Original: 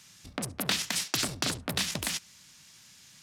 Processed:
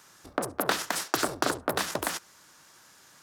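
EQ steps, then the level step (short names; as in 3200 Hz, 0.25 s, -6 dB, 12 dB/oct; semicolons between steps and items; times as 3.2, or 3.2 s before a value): band shelf 700 Hz +14.5 dB 2.8 oct; high shelf 11000 Hz +11.5 dB; -5.0 dB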